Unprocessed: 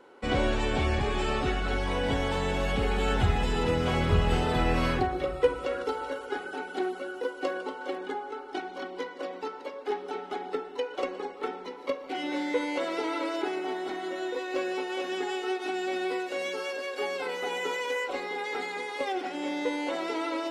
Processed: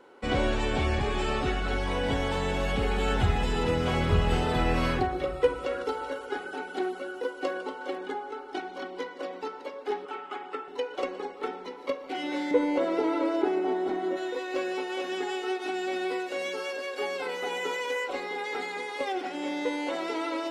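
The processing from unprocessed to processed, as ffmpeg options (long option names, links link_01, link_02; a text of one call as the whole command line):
ffmpeg -i in.wav -filter_complex "[0:a]asettb=1/sr,asplit=3[link_01][link_02][link_03];[link_01]atrim=end=10.054[link_04];[link_02]atrim=start=10.05:end=10.68,asetpts=PTS-STARTPTS,afade=type=in:duration=0.004:curve=qsin,afade=type=out:start_time=0.626:duration=0.004:curve=qsin,highpass=350,equalizer=frequency=450:width_type=q:width=4:gain=-6,equalizer=frequency=690:width_type=q:width=4:gain=-7,equalizer=frequency=1200:width_type=q:width=4:gain=7,equalizer=frequency=2700:width_type=q:width=4:gain=4,equalizer=frequency=4000:width_type=q:width=4:gain=-8,equalizer=frequency=5800:width_type=q:width=4:gain=-10,lowpass=frequency=8600:width=0.5412,lowpass=frequency=8600:width=1.3066[link_05];[link_03]atrim=start=10.676[link_06];[link_04][link_05]acrossfade=duration=0.004:curve1=hsin:curve2=qsin[link_07];[link_07][link_06]acrossfade=duration=0.004:curve1=qsin:curve2=hsin,asettb=1/sr,asplit=3[link_08][link_09][link_10];[link_08]atrim=end=12.514[link_11];[link_09]atrim=start=12.51:end=14.17,asetpts=PTS-STARTPTS,afade=type=in:duration=0.004:curve=qsin,afade=type=out:start_time=1.656:duration=0.004:curve=qsin,tiltshelf=frequency=1200:gain=7[link_12];[link_10]atrim=start=14.166[link_13];[link_11][link_12]acrossfade=duration=0.004:curve1=hsin:curve2=qsin[link_14];[link_14][link_13]acrossfade=duration=0.004:curve1=qsin:curve2=hsin" out.wav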